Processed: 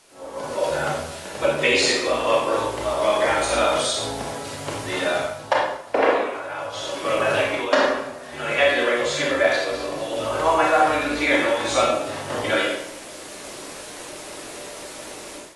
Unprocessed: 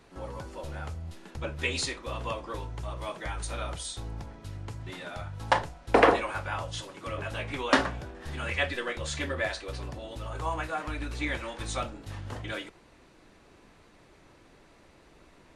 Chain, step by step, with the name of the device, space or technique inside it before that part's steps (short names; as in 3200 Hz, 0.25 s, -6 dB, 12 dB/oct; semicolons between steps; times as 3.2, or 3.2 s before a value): filmed off a television (BPF 300–7400 Hz; bell 600 Hz +10 dB 0.3 oct; reverb RT60 0.80 s, pre-delay 28 ms, DRR -2 dB; white noise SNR 22 dB; AGC gain up to 16.5 dB; gain -4.5 dB; AAC 32 kbps 24000 Hz)